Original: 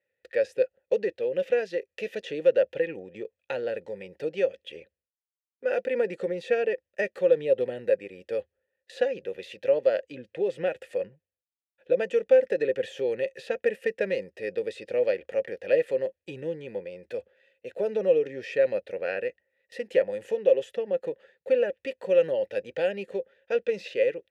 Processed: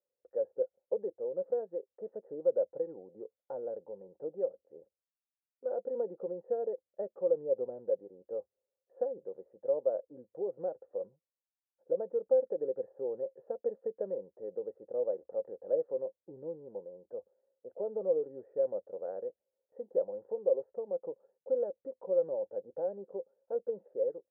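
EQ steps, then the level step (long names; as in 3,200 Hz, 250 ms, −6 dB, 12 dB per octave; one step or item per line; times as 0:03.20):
Butterworth low-pass 1,100 Hz 48 dB per octave
parametric band 82 Hz −9 dB 0.34 octaves
low-shelf EQ 200 Hz −10.5 dB
−6.5 dB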